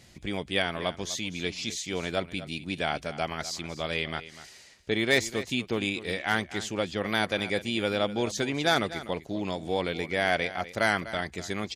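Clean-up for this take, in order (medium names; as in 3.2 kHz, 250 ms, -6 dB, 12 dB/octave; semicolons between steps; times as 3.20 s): clip repair -12 dBFS; inverse comb 248 ms -15 dB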